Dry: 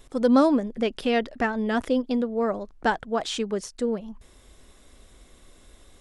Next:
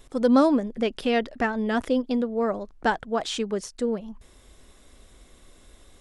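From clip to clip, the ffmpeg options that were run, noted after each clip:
-af anull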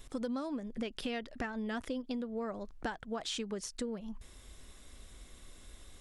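-af "equalizer=f=510:t=o:w=2.6:g=-5.5,acompressor=threshold=-34dB:ratio=12"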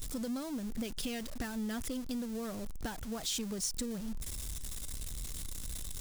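-af "aeval=exprs='val(0)+0.5*0.0112*sgn(val(0))':c=same,bass=f=250:g=10,treble=f=4k:g=13,volume=-7dB"

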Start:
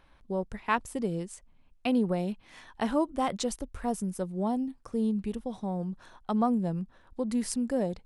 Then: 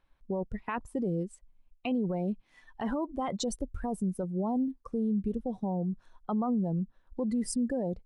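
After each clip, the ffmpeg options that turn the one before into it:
-filter_complex "[0:a]afftdn=nr=19:nf=-37,asplit=2[a][b];[b]acompressor=threshold=-38dB:ratio=6,volume=-1dB[c];[a][c]amix=inputs=2:normalize=0,alimiter=limit=-23.5dB:level=0:latency=1:release=11"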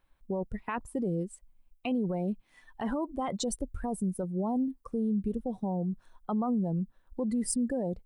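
-af "aexciter=amount=1.1:drive=9:freq=8.1k"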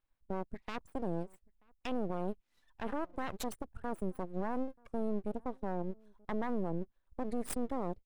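-filter_complex "[0:a]aeval=exprs='0.112*(cos(1*acos(clip(val(0)/0.112,-1,1)))-cos(1*PI/2))+0.0447*(cos(4*acos(clip(val(0)/0.112,-1,1)))-cos(4*PI/2))+0.00794*(cos(6*acos(clip(val(0)/0.112,-1,1)))-cos(6*PI/2))+0.00631*(cos(7*acos(clip(val(0)/0.112,-1,1)))-cos(7*PI/2))':c=same,aeval=exprs='abs(val(0))':c=same,asplit=2[a][b];[b]adelay=932.9,volume=-28dB,highshelf=f=4k:g=-21[c];[a][c]amix=inputs=2:normalize=0,volume=-8dB"

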